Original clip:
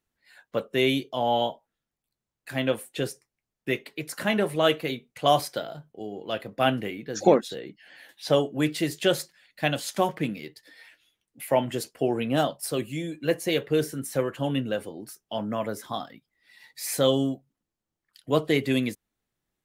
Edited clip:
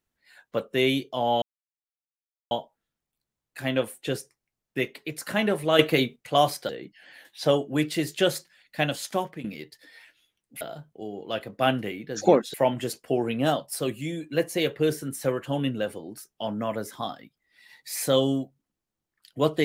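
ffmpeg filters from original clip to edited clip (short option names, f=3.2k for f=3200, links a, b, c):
-filter_complex "[0:a]asplit=8[a][b][c][d][e][f][g][h];[a]atrim=end=1.42,asetpts=PTS-STARTPTS,afade=t=out:st=1.416:d=0.004:c=hsin,apad=pad_dur=1.09[i];[b]atrim=start=1.42:end=4.702,asetpts=PTS-STARTPTS,afade=t=in:d=0.004:c=hsin[j];[c]atrim=start=4.698:end=5.072,asetpts=PTS-STARTPTS,volume=8dB[k];[d]atrim=start=5.068:end=5.602[l];[e]atrim=start=7.528:end=10.28,asetpts=PTS-STARTPTS,afade=t=out:st=2.112:d=0.64:c=qsin:silence=0.223872[m];[f]atrim=start=10.28:end=11.452,asetpts=PTS-STARTPTS,afade=t=in:d=0.004:c=hsin:silence=0.223872[n];[g]atrim=start=5.598:end=7.532[o];[h]atrim=start=11.448[p];[i][j]concat=n=2:v=0:a=1[q];[q][k]acrossfade=d=0.004:c1=hsin:c2=hsin[r];[r][l]acrossfade=d=0.004:c1=hsin:c2=hsin[s];[m][n]concat=n=2:v=0:a=1[t];[s][t]acrossfade=d=0.004:c1=hsin:c2=hsin[u];[u][o]acrossfade=d=0.004:c1=hsin:c2=hsin[v];[v][p]acrossfade=d=0.004:c1=hsin:c2=hsin"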